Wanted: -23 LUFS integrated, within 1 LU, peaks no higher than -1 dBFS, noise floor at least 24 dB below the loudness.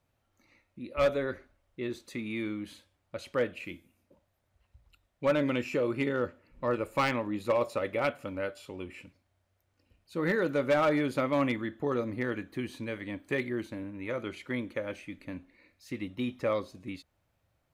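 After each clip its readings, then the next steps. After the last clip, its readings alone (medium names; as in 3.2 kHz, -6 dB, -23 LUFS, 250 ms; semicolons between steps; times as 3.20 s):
clipped samples 0.4%; clipping level -20.0 dBFS; loudness -32.0 LUFS; peak level -20.0 dBFS; loudness target -23.0 LUFS
-> clip repair -20 dBFS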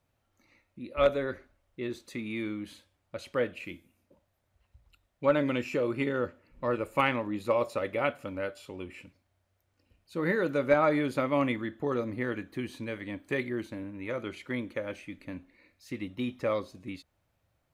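clipped samples 0.0%; loudness -31.5 LUFS; peak level -11.0 dBFS; loudness target -23.0 LUFS
-> trim +8.5 dB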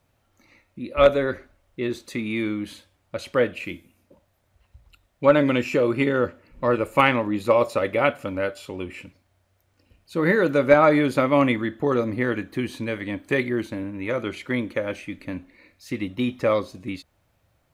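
loudness -23.0 LUFS; peak level -2.5 dBFS; noise floor -68 dBFS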